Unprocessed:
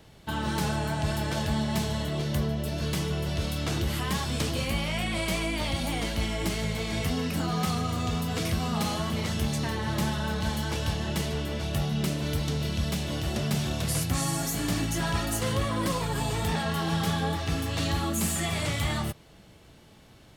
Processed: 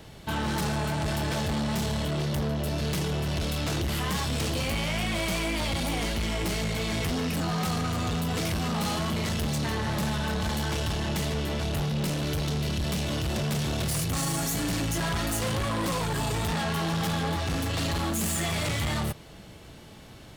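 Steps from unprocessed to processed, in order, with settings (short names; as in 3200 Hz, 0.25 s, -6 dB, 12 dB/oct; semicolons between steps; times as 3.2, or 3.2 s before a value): soft clip -32 dBFS, distortion -9 dB; gain +6.5 dB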